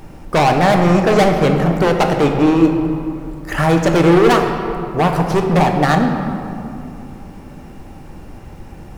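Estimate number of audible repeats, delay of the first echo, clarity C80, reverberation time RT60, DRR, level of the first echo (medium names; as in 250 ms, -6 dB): no echo, no echo, 6.0 dB, 2.6 s, 3.5 dB, no echo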